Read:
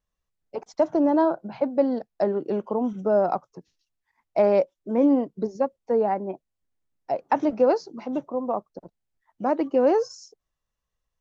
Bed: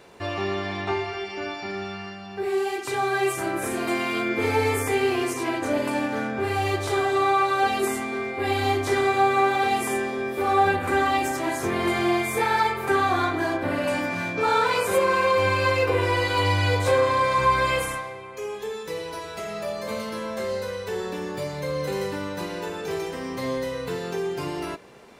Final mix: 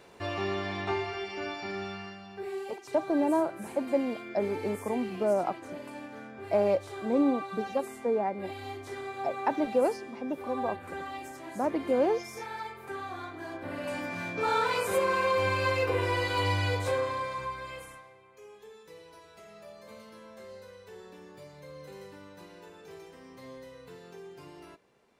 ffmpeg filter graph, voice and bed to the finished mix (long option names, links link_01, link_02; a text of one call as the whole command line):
ffmpeg -i stem1.wav -i stem2.wav -filter_complex "[0:a]adelay=2150,volume=-6dB[link_01];[1:a]volume=6.5dB,afade=type=out:start_time=1.87:duration=0.91:silence=0.237137,afade=type=in:start_time=13.35:duration=1.13:silence=0.281838,afade=type=out:start_time=16.54:duration=1.02:silence=0.237137[link_02];[link_01][link_02]amix=inputs=2:normalize=0" out.wav